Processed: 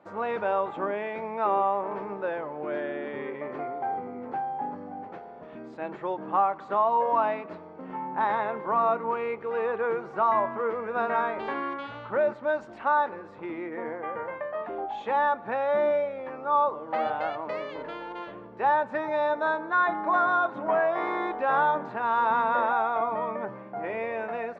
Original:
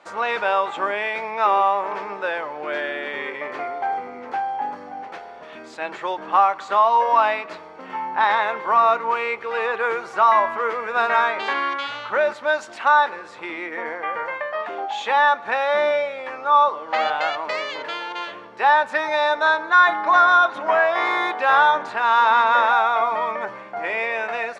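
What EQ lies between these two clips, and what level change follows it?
tilt EQ -5.5 dB/octave; peaking EQ 75 Hz -14.5 dB 0.58 oct; -8.0 dB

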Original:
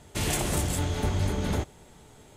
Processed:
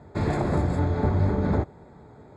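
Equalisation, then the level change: boxcar filter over 15 samples; high-pass 70 Hz; distance through air 64 m; +6.0 dB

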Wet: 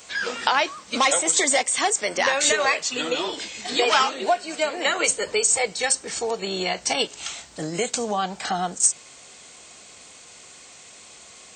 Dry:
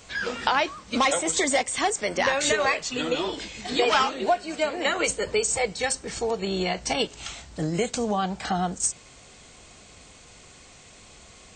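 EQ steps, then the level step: high-pass 390 Hz 6 dB/octave; treble shelf 6.8 kHz +7.5 dB; +2.5 dB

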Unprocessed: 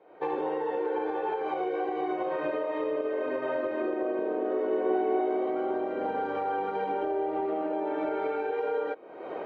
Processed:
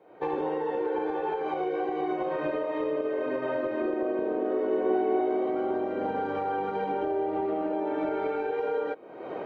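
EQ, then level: tone controls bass +8 dB, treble +3 dB; 0.0 dB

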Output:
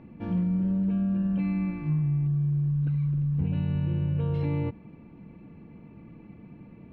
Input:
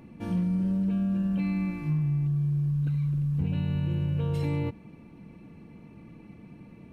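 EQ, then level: distance through air 310 m; +1.0 dB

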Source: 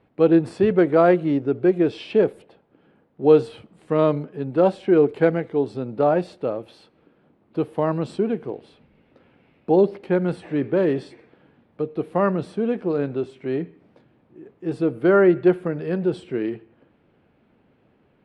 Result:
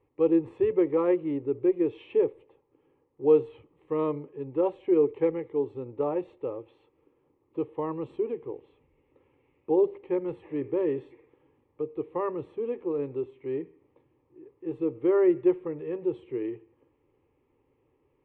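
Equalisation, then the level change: distance through air 110 m; treble shelf 2.3 kHz -9.5 dB; static phaser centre 1 kHz, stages 8; -4.5 dB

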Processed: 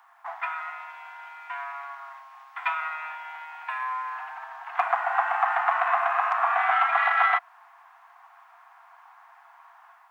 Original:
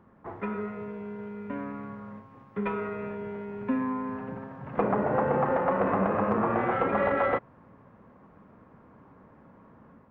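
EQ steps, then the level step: Chebyshev high-pass 680 Hz, order 10; treble shelf 2.5 kHz +10 dB; dynamic bell 880 Hz, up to -6 dB, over -46 dBFS, Q 5.7; +7.0 dB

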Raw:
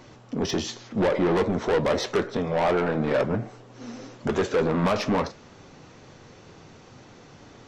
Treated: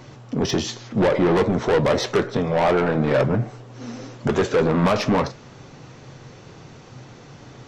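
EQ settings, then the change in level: peaking EQ 130 Hz +10 dB 0.27 oct; +4.0 dB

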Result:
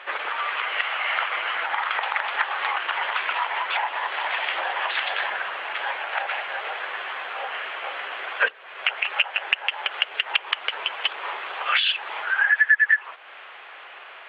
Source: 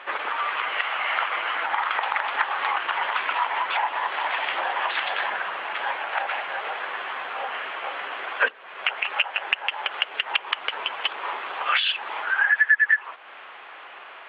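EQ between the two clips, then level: graphic EQ 125/250/1000 Hz -5/-9/-4 dB; +2.0 dB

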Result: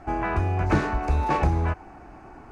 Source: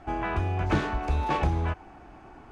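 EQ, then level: peaking EQ 3.3 kHz -9.5 dB 0.46 oct; +3.5 dB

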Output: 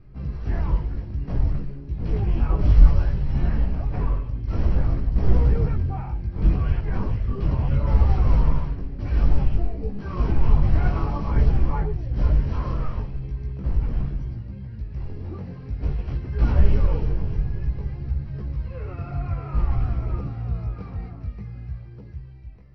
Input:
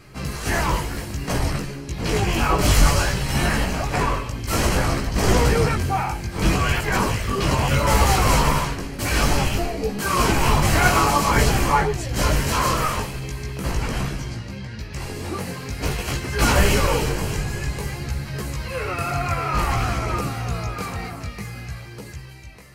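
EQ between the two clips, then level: brick-wall FIR low-pass 5.9 kHz; tilt EQ -4.5 dB/octave; -15.5 dB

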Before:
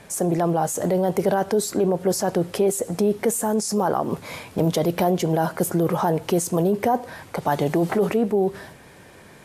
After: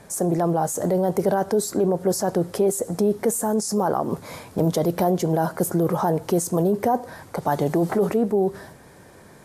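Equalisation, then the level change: peaking EQ 2.7 kHz -8.5 dB 1 oct; 0.0 dB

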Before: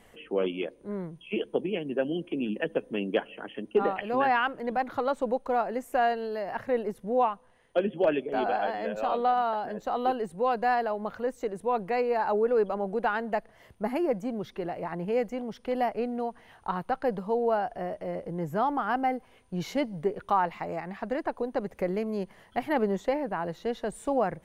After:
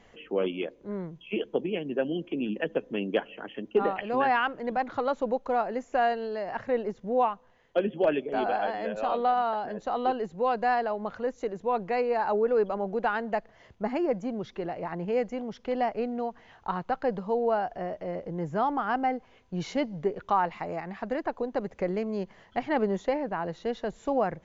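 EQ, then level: brick-wall FIR low-pass 7.4 kHz; 0.0 dB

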